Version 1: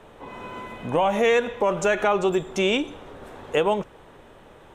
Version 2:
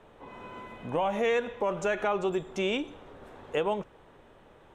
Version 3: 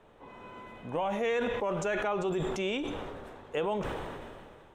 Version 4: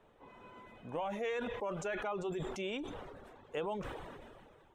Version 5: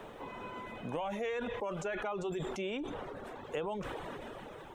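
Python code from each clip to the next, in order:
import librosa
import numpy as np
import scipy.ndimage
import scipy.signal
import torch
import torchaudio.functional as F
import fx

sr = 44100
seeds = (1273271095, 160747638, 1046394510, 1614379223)

y1 = fx.high_shelf(x, sr, hz=6000.0, db=-6.5)
y1 = y1 * librosa.db_to_amplitude(-7.0)
y2 = fx.sustainer(y1, sr, db_per_s=27.0)
y2 = y2 * librosa.db_to_amplitude(-3.5)
y3 = fx.dereverb_blind(y2, sr, rt60_s=0.56)
y3 = y3 * librosa.db_to_amplitude(-6.0)
y4 = fx.band_squash(y3, sr, depth_pct=70)
y4 = y4 * librosa.db_to_amplitude(1.0)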